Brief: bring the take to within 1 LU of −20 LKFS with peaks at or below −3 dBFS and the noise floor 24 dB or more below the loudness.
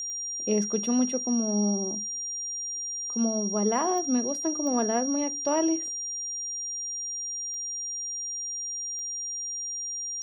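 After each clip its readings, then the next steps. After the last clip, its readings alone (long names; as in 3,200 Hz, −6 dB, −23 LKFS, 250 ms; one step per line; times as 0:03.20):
number of clicks 5; interfering tone 5,700 Hz; level of the tone −31 dBFS; integrated loudness −28.0 LKFS; sample peak −13.0 dBFS; target loudness −20.0 LKFS
→ click removal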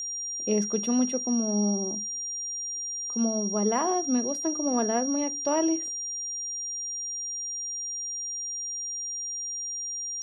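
number of clicks 0; interfering tone 5,700 Hz; level of the tone −31 dBFS
→ notch filter 5,700 Hz, Q 30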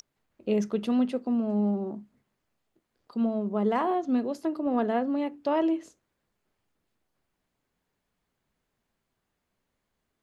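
interfering tone none found; integrated loudness −28.0 LKFS; sample peak −14.0 dBFS; target loudness −20.0 LKFS
→ level +8 dB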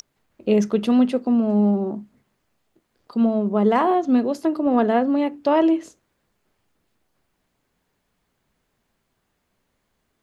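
integrated loudness −20.0 LKFS; sample peak −6.0 dBFS; background noise floor −73 dBFS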